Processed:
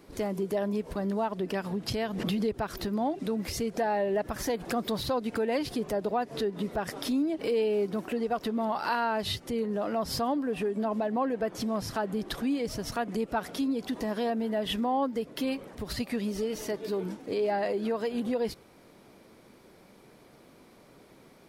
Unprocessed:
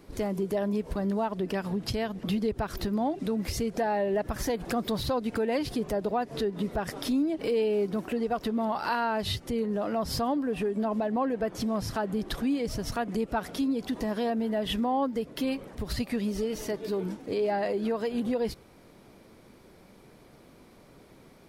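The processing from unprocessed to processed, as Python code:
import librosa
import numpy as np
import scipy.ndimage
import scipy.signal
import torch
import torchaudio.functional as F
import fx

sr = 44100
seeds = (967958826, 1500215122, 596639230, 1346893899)

y = fx.low_shelf(x, sr, hz=110.0, db=-9.0)
y = fx.pre_swell(y, sr, db_per_s=32.0, at=(1.91, 2.58))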